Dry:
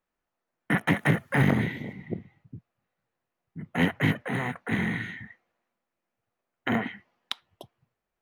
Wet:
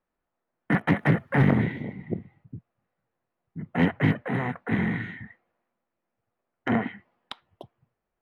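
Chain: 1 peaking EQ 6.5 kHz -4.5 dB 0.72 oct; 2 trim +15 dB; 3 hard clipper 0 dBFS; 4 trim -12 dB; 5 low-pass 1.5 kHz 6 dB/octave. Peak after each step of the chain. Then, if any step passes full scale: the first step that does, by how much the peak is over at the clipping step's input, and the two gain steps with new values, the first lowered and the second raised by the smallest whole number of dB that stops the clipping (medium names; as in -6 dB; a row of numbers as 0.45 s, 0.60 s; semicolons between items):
-10.0 dBFS, +5.0 dBFS, 0.0 dBFS, -12.0 dBFS, -12.0 dBFS; step 2, 5.0 dB; step 2 +10 dB, step 4 -7 dB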